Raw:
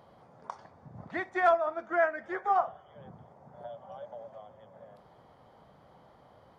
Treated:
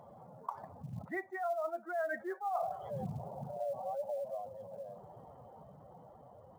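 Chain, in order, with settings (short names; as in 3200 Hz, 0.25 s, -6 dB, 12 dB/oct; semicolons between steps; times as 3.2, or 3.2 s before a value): spectral contrast raised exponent 1.9; Doppler pass-by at 2.91, 8 m/s, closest 8.7 m; reverse; compressor 10:1, threshold -46 dBFS, peak gain reduction 22.5 dB; reverse; short-mantissa float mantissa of 4-bit; gain +12 dB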